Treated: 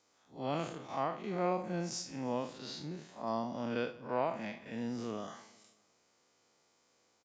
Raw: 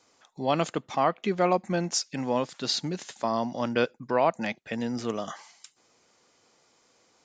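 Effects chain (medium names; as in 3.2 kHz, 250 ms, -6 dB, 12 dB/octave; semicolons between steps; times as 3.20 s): spectral blur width 126 ms; 2.57–3.26 s: treble shelf 4.8 kHz -> 2.8 kHz -11 dB; feedback delay 155 ms, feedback 55%, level -21 dB; trim -6.5 dB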